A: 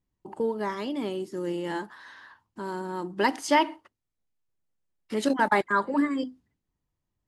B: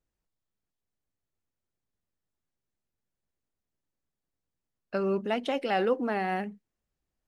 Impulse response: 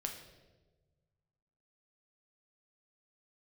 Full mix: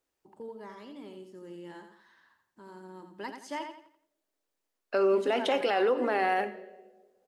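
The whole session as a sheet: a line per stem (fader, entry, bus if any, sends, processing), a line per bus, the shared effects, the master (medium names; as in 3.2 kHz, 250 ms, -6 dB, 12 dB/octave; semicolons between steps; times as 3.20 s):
-16.5 dB, 0.00 s, send -19 dB, echo send -6.5 dB, none
+2.5 dB, 0.00 s, send -4.5 dB, no echo send, high-pass 300 Hz 24 dB/octave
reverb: on, RT60 1.3 s, pre-delay 7 ms
echo: feedback delay 86 ms, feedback 34%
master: peak limiter -18 dBFS, peak gain reduction 8.5 dB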